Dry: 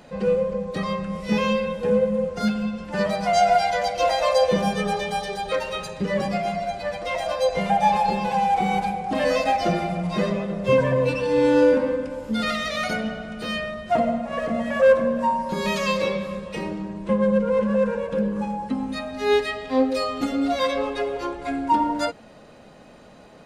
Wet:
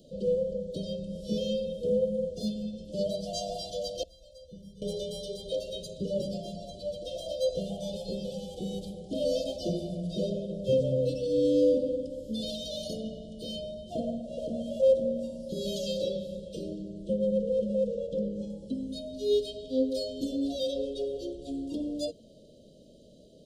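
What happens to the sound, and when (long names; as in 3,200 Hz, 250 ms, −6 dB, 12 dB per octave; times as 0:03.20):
0:04.03–0:04.82: guitar amp tone stack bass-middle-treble 10-0-1
0:17.87–0:18.50: low-pass filter 8,200 Hz 24 dB per octave
whole clip: Chebyshev band-stop filter 620–3,100 Hz, order 5; dynamic equaliser 210 Hz, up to −3 dB, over −41 dBFS, Q 3.9; level −5.5 dB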